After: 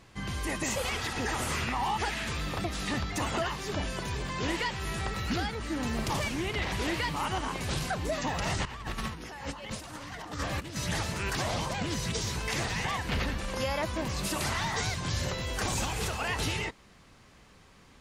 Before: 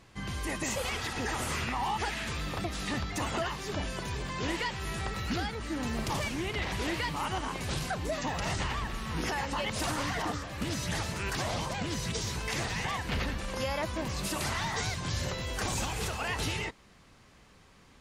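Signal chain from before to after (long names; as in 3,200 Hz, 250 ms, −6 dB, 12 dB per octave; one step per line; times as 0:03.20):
0:08.65–0:10.76: compressor whose output falls as the input rises −38 dBFS, ratio −0.5
level +1.5 dB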